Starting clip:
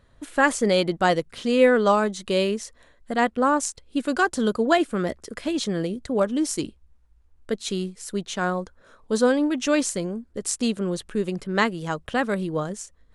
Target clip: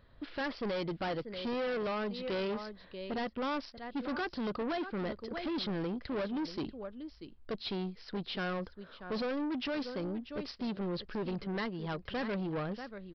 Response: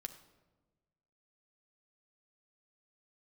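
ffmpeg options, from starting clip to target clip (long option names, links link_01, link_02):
-af "aecho=1:1:637:0.133,alimiter=limit=-13dB:level=0:latency=1:release=422,aresample=11025,asoftclip=type=tanh:threshold=-29dB,aresample=44100,volume=-3dB"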